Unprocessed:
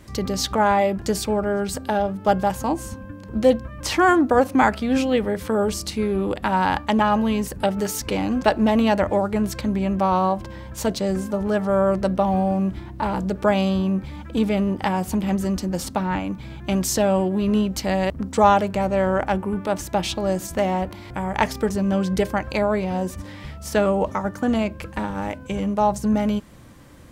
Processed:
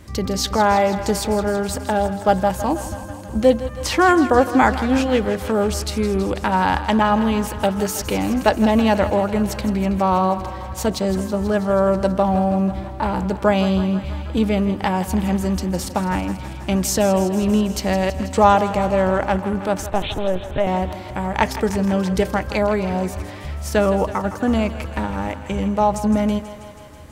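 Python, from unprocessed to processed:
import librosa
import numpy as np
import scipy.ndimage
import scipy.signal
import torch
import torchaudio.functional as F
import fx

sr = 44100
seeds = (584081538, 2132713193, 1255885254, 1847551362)

y = fx.lpc_vocoder(x, sr, seeds[0], excitation='pitch_kept', order=10, at=(19.86, 20.67))
y = fx.peak_eq(y, sr, hz=75.0, db=9.0, octaves=0.3)
y = fx.echo_thinned(y, sr, ms=162, feedback_pct=75, hz=340.0, wet_db=-12.5)
y = y * 10.0 ** (2.0 / 20.0)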